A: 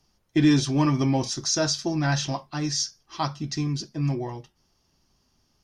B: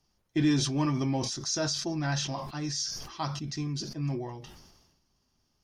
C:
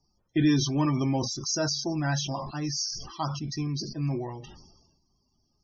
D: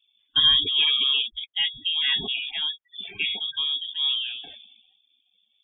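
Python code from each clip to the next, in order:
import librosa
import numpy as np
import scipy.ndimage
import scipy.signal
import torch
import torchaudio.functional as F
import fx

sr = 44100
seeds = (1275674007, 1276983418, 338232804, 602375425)

y1 = fx.sustainer(x, sr, db_per_s=47.0)
y1 = F.gain(torch.from_numpy(y1), -6.5).numpy()
y2 = fx.spec_topn(y1, sr, count=64)
y2 = F.gain(torch.from_numpy(y2), 2.5).numpy()
y3 = fx.freq_invert(y2, sr, carrier_hz=3500)
y3 = F.gain(torch.from_numpy(y3), 3.5).numpy()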